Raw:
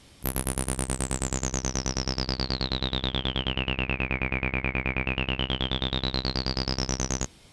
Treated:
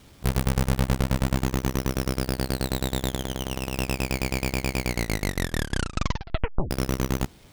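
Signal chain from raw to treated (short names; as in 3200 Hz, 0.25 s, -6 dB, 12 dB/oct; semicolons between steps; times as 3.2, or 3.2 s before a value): half-waves squared off; 3.16–3.78 negative-ratio compressor -26 dBFS, ratio -0.5; 4.79 tape stop 1.92 s; gain -3 dB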